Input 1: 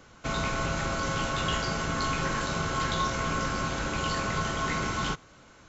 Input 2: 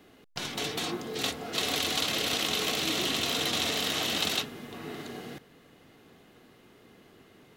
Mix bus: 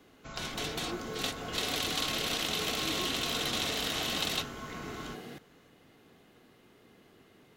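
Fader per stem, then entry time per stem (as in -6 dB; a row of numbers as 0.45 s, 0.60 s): -14.5 dB, -3.5 dB; 0.00 s, 0.00 s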